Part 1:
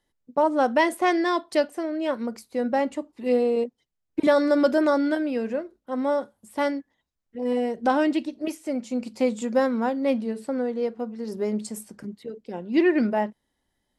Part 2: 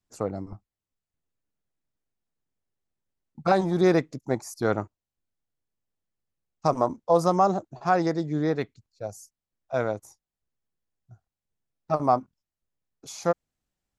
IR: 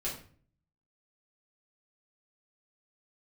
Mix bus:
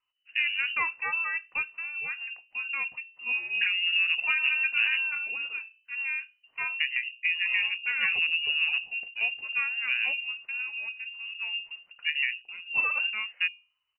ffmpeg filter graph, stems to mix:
-filter_complex "[0:a]volume=-6dB[a];[1:a]lowpass=f=1.3k:w=0.5412,lowpass=f=1.3k:w=1.3066,acompressor=threshold=-22dB:ratio=10,adelay=150,volume=1.5dB[b];[a][b]amix=inputs=2:normalize=0,equalizer=f=720:t=o:w=0.44:g=-9,bandreject=f=60:t=h:w=6,bandreject=f=120:t=h:w=6,bandreject=f=180:t=h:w=6,bandreject=f=240:t=h:w=6,bandreject=f=300:t=h:w=6,bandreject=f=360:t=h:w=6,bandreject=f=420:t=h:w=6,bandreject=f=480:t=h:w=6,bandreject=f=540:t=h:w=6,lowpass=f=2.6k:t=q:w=0.5098,lowpass=f=2.6k:t=q:w=0.6013,lowpass=f=2.6k:t=q:w=0.9,lowpass=f=2.6k:t=q:w=2.563,afreqshift=-3000"

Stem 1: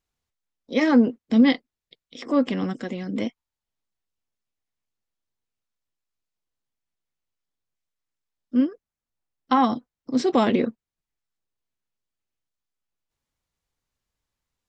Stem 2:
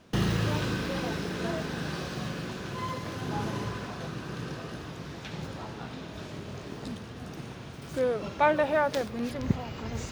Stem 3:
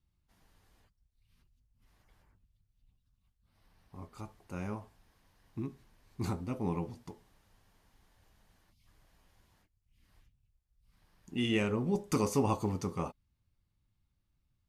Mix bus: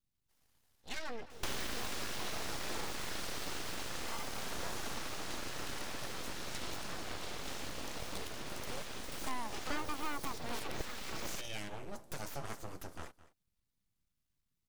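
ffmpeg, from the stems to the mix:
-filter_complex "[0:a]aphaser=in_gain=1:out_gain=1:delay=1.5:decay=0.38:speed=0.82:type=sinusoidal,equalizer=f=590:t=o:w=2:g=-11,aecho=1:1:6:0.49,adelay=150,volume=-9.5dB,asplit=2[a][b];[b]volume=-18.5dB[c];[1:a]highshelf=f=4.8k:g=9.5,adelay=1300,volume=2.5dB[d];[2:a]highshelf=f=3.4k:g=11,acontrast=89,volume=-15.5dB,asplit=2[e][f];[f]volume=-18dB[g];[c][g]amix=inputs=2:normalize=0,aecho=0:1:214:1[h];[a][d][e][h]amix=inputs=4:normalize=0,acrossover=split=520|4800[i][j][k];[i]acompressor=threshold=-40dB:ratio=4[l];[j]acompressor=threshold=-40dB:ratio=4[m];[k]acompressor=threshold=-46dB:ratio=4[n];[l][m][n]amix=inputs=3:normalize=0,aeval=exprs='abs(val(0))':c=same"

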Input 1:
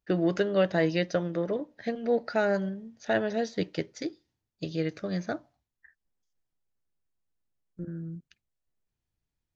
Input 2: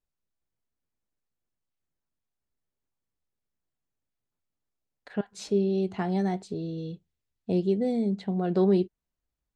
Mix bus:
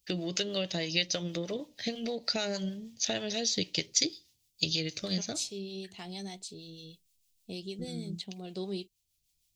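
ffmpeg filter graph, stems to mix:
-filter_complex "[0:a]lowshelf=f=170:g=7.5,acompressor=threshold=-28dB:ratio=6,volume=-1dB[a];[1:a]volume=-13dB,asplit=2[b][c];[c]apad=whole_len=421334[d];[a][d]sidechaincompress=threshold=-38dB:ratio=8:attack=29:release=1340[e];[e][b]amix=inputs=2:normalize=0,acrossover=split=600[f][g];[f]aeval=exprs='val(0)*(1-0.5/2+0.5/2*cos(2*PI*6.4*n/s))':c=same[h];[g]aeval=exprs='val(0)*(1-0.5/2-0.5/2*cos(2*PI*6.4*n/s))':c=same[i];[h][i]amix=inputs=2:normalize=0,aexciter=amount=11.1:drive=4:freq=2.4k"

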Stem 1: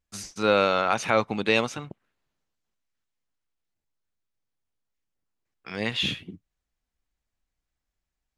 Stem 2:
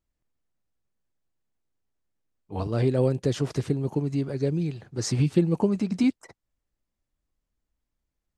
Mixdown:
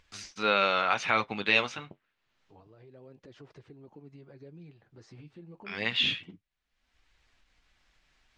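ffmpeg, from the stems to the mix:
-filter_complex "[0:a]tiltshelf=f=1.3k:g=-7.5,volume=2.5dB[a];[1:a]lowshelf=f=350:g=-8.5,alimiter=level_in=0.5dB:limit=-24dB:level=0:latency=1:release=113,volume=-0.5dB,volume=-11.5dB,afade=t=in:st=2.8:d=0.28:silence=0.354813[b];[a][b]amix=inputs=2:normalize=0,lowpass=3.2k,flanger=delay=1.8:depth=9.8:regen=-53:speed=0.28:shape=triangular,acompressor=mode=upward:threshold=-49dB:ratio=2.5"

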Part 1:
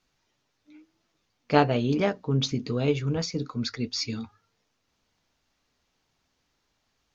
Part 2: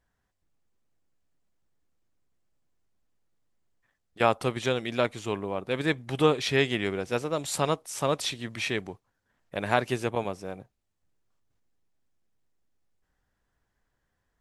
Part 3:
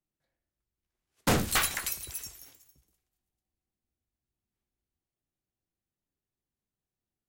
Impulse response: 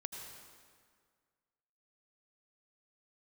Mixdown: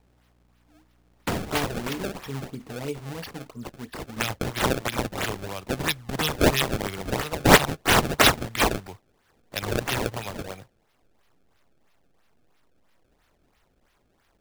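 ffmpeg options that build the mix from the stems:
-filter_complex "[0:a]volume=2.5dB[a];[1:a]asubboost=boost=3.5:cutoff=120,acrossover=split=170|3000[b][c][d];[c]acompressor=threshold=-33dB:ratio=6[e];[b][e][d]amix=inputs=3:normalize=0,crystalizer=i=9:c=0,volume=0.5dB,asplit=2[f][g];[2:a]aeval=exprs='val(0)+0.00112*(sin(2*PI*60*n/s)+sin(2*PI*2*60*n/s)/2+sin(2*PI*3*60*n/s)/3+sin(2*PI*4*60*n/s)/4+sin(2*PI*5*60*n/s)/5)':c=same,volume=0.5dB[h];[g]apad=whole_len=315260[i];[a][i]sidechaingate=range=-8dB:threshold=-55dB:ratio=16:detection=peak[j];[j][f][h]amix=inputs=3:normalize=0,lowshelf=f=320:g=-4.5,acrossover=split=410|3000[k][l][m];[l]acompressor=threshold=-28dB:ratio=6[n];[k][n][m]amix=inputs=3:normalize=0,acrusher=samples=26:mix=1:aa=0.000001:lfo=1:lforange=41.6:lforate=3"

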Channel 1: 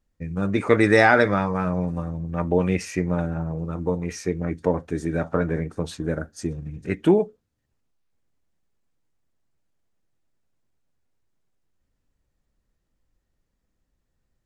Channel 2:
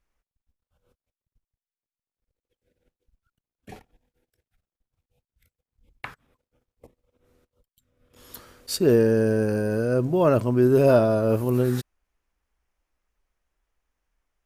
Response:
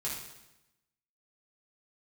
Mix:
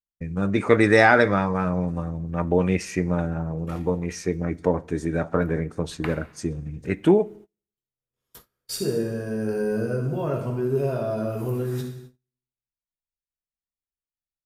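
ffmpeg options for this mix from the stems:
-filter_complex "[0:a]volume=0dB,asplit=3[a][b][c];[b]volume=-23dB[d];[1:a]bandreject=f=4.2k:w=22,acompressor=threshold=-22dB:ratio=12,volume=-1dB,asplit=2[e][f];[f]volume=-4.5dB[g];[c]apad=whole_len=637344[h];[e][h]sidechaingate=range=-8dB:threshold=-37dB:ratio=16:detection=peak[i];[2:a]atrim=start_sample=2205[j];[d][g]amix=inputs=2:normalize=0[k];[k][j]afir=irnorm=-1:irlink=0[l];[a][i][l]amix=inputs=3:normalize=0,agate=range=-31dB:threshold=-43dB:ratio=16:detection=peak"

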